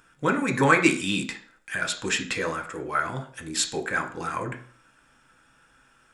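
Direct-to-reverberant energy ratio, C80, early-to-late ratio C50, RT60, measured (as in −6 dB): 3.5 dB, 16.5 dB, 12.0 dB, 0.50 s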